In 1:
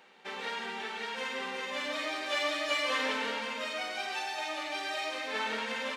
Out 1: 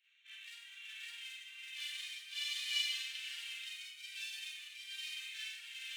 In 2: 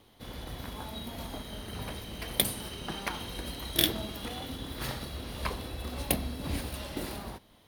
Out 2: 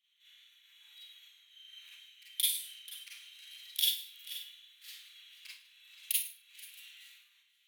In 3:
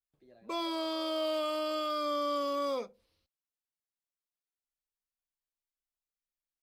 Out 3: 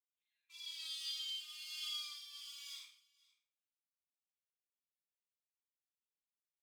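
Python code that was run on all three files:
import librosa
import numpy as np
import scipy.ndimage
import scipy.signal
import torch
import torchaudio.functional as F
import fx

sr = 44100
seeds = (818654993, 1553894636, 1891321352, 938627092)

y = fx.wiener(x, sr, points=9)
y = scipy.signal.sosfilt(scipy.signal.cheby2(4, 70, 620.0, 'highpass', fs=sr, output='sos'), y)
y = fx.echo_multitap(y, sr, ms=(109, 483), db=(-16.5, -19.5))
y = fx.rev_schroeder(y, sr, rt60_s=0.38, comb_ms=32, drr_db=-6.5)
y = fx.tremolo_shape(y, sr, shape='triangle', hz=1.2, depth_pct=60)
y = y * librosa.db_to_amplitude(-3.5)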